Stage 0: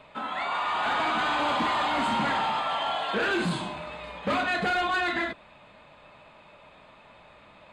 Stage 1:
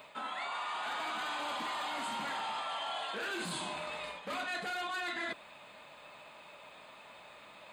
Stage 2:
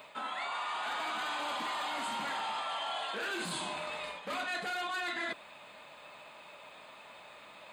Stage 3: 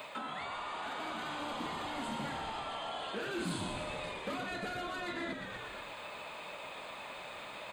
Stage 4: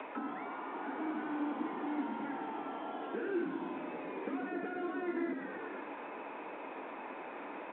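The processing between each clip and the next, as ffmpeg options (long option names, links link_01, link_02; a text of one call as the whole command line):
ffmpeg -i in.wav -af "aemphasis=mode=production:type=bsi,areverse,acompressor=threshold=-35dB:ratio=6,areverse,volume=-1dB" out.wav
ffmpeg -i in.wav -af "lowshelf=frequency=190:gain=-3.5,volume=1.5dB" out.wav
ffmpeg -i in.wav -filter_complex "[0:a]asplit=2[link_01][link_02];[link_02]asplit=7[link_03][link_04][link_05][link_06][link_07][link_08][link_09];[link_03]adelay=119,afreqshift=-74,volume=-8dB[link_10];[link_04]adelay=238,afreqshift=-148,volume=-12.7dB[link_11];[link_05]adelay=357,afreqshift=-222,volume=-17.5dB[link_12];[link_06]adelay=476,afreqshift=-296,volume=-22.2dB[link_13];[link_07]adelay=595,afreqshift=-370,volume=-26.9dB[link_14];[link_08]adelay=714,afreqshift=-444,volume=-31.7dB[link_15];[link_09]adelay=833,afreqshift=-518,volume=-36.4dB[link_16];[link_10][link_11][link_12][link_13][link_14][link_15][link_16]amix=inputs=7:normalize=0[link_17];[link_01][link_17]amix=inputs=2:normalize=0,acrossover=split=410[link_18][link_19];[link_19]acompressor=threshold=-46dB:ratio=6[link_20];[link_18][link_20]amix=inputs=2:normalize=0,volume=6dB" out.wav
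ffmpeg -i in.wav -filter_complex "[0:a]acrossover=split=380|1200[link_01][link_02][link_03];[link_01]acompressor=threshold=-48dB:ratio=4[link_04];[link_02]acompressor=threshold=-57dB:ratio=4[link_05];[link_03]acompressor=threshold=-58dB:ratio=4[link_06];[link_04][link_05][link_06]amix=inputs=3:normalize=0,highpass=frequency=280:width=0.5412,highpass=frequency=280:width=1.3066,equalizer=frequency=290:width_type=q:width=4:gain=5,equalizer=frequency=590:width_type=q:width=4:gain=-9,equalizer=frequency=1200:width_type=q:width=4:gain=-7,equalizer=frequency=1900:width_type=q:width=4:gain=-3,lowpass=frequency=2000:width=0.5412,lowpass=frequency=2000:width=1.3066,volume=13dB" -ar 8000 -c:a pcm_mulaw out.wav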